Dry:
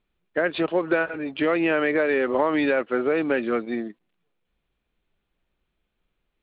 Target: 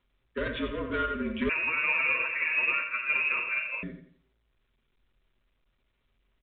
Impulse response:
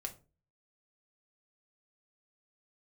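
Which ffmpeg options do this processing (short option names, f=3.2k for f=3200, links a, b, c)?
-filter_complex "[0:a]aecho=1:1:6.8:0.48,aeval=exprs='(tanh(12.6*val(0)+0.45)-tanh(0.45))/12.6':c=same,afreqshift=-56,tremolo=f=19:d=0.38,aecho=1:1:87|174|261|348:0.422|0.143|0.0487|0.0166[a];[1:a]atrim=start_sample=2205,atrim=end_sample=3969[b];[a][b]afir=irnorm=-1:irlink=0,asettb=1/sr,asplit=3[c][d][e];[c]atrim=end=1.494[f];[d]atrim=start=1.49:end=3.83,asetpts=PTS-STARTPTS,afade=t=in:d=0.004:c=qsin,afade=t=out:st=2.336:d=0.004:c=qsin,lowpass=f=2.4k:t=q:w=0.5098,lowpass=f=2.4k:t=q:w=0.6013,lowpass=f=2.4k:t=q:w=0.9,lowpass=f=2.4k:t=q:w=2.563,afreqshift=-2800[g];[e]atrim=start=3.826[h];[f][g]acrossfade=d=0.004:c1=hsin:c2=qsin[i];[i][h]acrossfade=d=0.004:c1=qsin:c2=hsin,asuperstop=centerf=780:order=12:qfactor=2.9" -ar 8000 -c:a pcm_mulaw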